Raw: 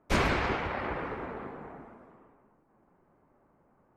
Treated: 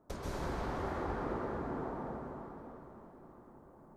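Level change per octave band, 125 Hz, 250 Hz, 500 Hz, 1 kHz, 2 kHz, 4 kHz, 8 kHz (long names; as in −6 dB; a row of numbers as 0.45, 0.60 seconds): −5.0 dB, −3.5 dB, −4.0 dB, −6.0 dB, −13.5 dB, −14.5 dB, can't be measured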